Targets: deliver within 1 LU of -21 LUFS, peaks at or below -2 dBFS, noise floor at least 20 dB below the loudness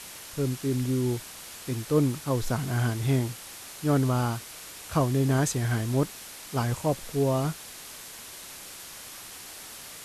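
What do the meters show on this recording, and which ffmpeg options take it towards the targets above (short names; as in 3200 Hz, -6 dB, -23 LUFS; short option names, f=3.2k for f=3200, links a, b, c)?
noise floor -44 dBFS; noise floor target -48 dBFS; loudness -28.0 LUFS; peak -11.0 dBFS; loudness target -21.0 LUFS
-> -af "afftdn=nr=6:nf=-44"
-af "volume=7dB"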